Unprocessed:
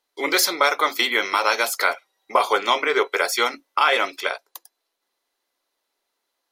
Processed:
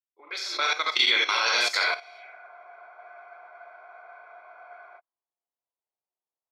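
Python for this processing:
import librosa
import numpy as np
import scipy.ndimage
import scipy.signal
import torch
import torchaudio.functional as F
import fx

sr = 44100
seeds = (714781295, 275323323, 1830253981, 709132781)

y = fx.fade_in_head(x, sr, length_s=0.64)
y = fx.doppler_pass(y, sr, speed_mps=14, closest_m=11.0, pass_at_s=2.28)
y = fx.low_shelf(y, sr, hz=97.0, db=-10.0)
y = fx.room_early_taps(y, sr, ms=(33, 63), db=(-8.5, -12.0))
y = fx.rev_gated(y, sr, seeds[0], gate_ms=100, shape='rising', drr_db=-1.0)
y = fx.level_steps(y, sr, step_db=12)
y = fx.tilt_shelf(y, sr, db=-4.5, hz=1200.0)
y = fx.spec_freeze(y, sr, seeds[1], at_s=2.02, hold_s=2.97)
y = fx.envelope_lowpass(y, sr, base_hz=800.0, top_hz=4500.0, q=2.1, full_db=-32.0, direction='up')
y = y * librosa.db_to_amplitude(-2.5)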